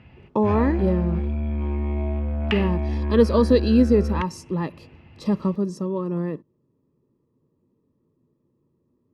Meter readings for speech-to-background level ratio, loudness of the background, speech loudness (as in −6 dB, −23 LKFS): 4.0 dB, −27.0 LKFS, −23.0 LKFS